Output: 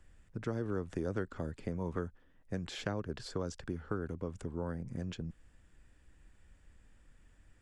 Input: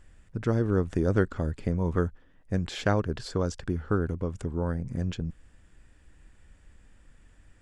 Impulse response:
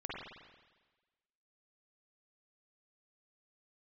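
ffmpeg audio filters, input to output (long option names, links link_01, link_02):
-filter_complex "[0:a]acrossover=split=140|420[link_01][link_02][link_03];[link_01]acompressor=threshold=-39dB:ratio=4[link_04];[link_02]acompressor=threshold=-31dB:ratio=4[link_05];[link_03]acompressor=threshold=-32dB:ratio=4[link_06];[link_04][link_05][link_06]amix=inputs=3:normalize=0,volume=-6dB"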